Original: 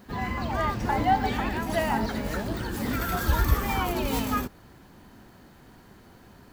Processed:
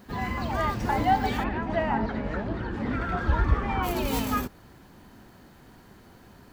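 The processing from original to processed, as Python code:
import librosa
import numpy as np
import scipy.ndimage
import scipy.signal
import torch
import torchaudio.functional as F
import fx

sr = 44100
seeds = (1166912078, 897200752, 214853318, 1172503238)

y = fx.lowpass(x, sr, hz=2200.0, slope=12, at=(1.43, 3.82), fade=0.02)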